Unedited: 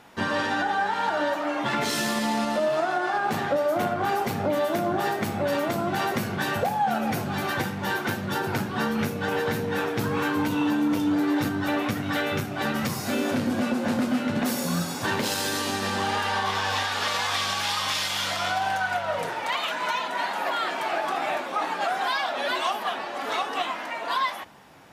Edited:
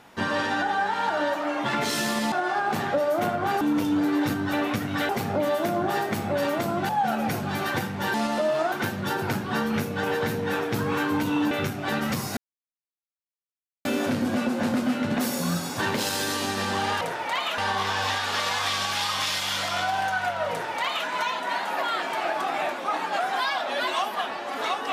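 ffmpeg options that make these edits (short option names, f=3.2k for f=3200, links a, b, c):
-filter_complex "[0:a]asplit=11[a][b][c][d][e][f][g][h][i][j][k];[a]atrim=end=2.322[l];[b]atrim=start=2.898:end=4.192[m];[c]atrim=start=10.758:end=12.242[n];[d]atrim=start=4.188:end=5.992[o];[e]atrim=start=6.718:end=7.972[p];[f]atrim=start=2.318:end=2.902[q];[g]atrim=start=7.968:end=10.762[r];[h]atrim=start=12.238:end=13.1,asetpts=PTS-STARTPTS,afade=t=out:st=0.858:d=0.004:c=hsin,apad=pad_dur=1.48[s];[i]atrim=start=13.1:end=16.262,asetpts=PTS-STARTPTS,afade=t=in:d=0.004:c=hsin[t];[j]atrim=start=19.178:end=19.752[u];[k]atrim=start=16.258[v];[l][m]acrossfade=d=0.004:c1=hsin:c2=hsin[w];[w][n]acrossfade=d=0.004:c1=hsin:c2=hsin[x];[x][o]acrossfade=d=0.004:c1=hsin:c2=hsin[y];[y][p]acrossfade=d=0.004:c1=hsin:c2=hsin[z];[z][q]acrossfade=d=0.004:c1=hsin:c2=hsin[aa];[aa][r]acrossfade=d=0.004:c1=hsin:c2=hsin[ab];[s][t]concat=n=2:v=0:a=1[ac];[ab][ac]acrossfade=d=0.004:c1=hsin:c2=hsin[ad];[ad][u]acrossfade=d=0.004:c1=hsin:c2=hsin[ae];[ae][v]acrossfade=d=0.004:c1=hsin:c2=hsin"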